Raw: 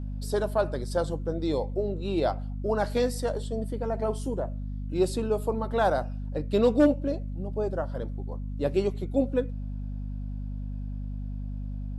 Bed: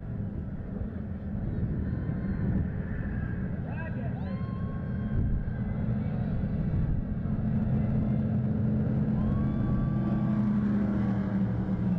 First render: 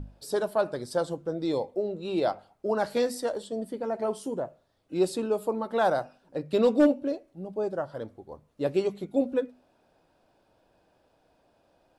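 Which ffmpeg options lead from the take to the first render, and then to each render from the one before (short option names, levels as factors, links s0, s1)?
-af "bandreject=f=50:t=h:w=6,bandreject=f=100:t=h:w=6,bandreject=f=150:t=h:w=6,bandreject=f=200:t=h:w=6,bandreject=f=250:t=h:w=6"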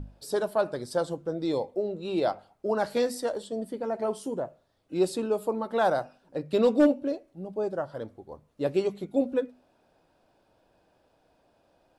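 -af anull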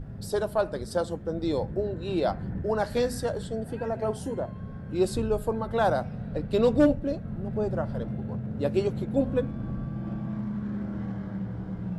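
-filter_complex "[1:a]volume=0.531[s0];[0:a][s0]amix=inputs=2:normalize=0"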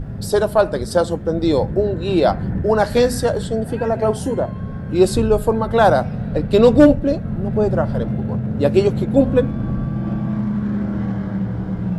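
-af "volume=3.55,alimiter=limit=0.891:level=0:latency=1"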